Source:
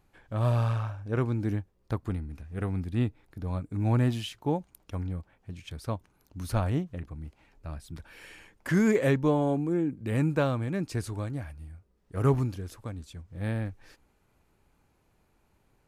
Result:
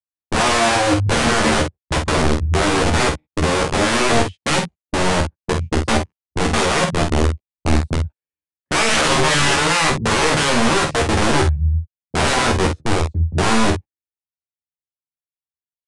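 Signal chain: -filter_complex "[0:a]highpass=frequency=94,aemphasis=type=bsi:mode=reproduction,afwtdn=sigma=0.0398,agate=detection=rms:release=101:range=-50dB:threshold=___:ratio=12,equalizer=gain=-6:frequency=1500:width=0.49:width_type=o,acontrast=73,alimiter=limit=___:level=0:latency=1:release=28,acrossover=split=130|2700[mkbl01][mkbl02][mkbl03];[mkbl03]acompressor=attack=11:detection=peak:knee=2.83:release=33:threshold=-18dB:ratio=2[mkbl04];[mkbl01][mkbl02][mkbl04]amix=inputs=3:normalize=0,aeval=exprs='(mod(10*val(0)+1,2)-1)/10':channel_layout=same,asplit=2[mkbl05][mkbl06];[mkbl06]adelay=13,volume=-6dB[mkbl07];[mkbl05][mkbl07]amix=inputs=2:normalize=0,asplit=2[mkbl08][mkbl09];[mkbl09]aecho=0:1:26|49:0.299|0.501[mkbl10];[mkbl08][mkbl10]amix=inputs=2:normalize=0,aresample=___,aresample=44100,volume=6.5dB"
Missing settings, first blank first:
-40dB, -9.5dB, 22050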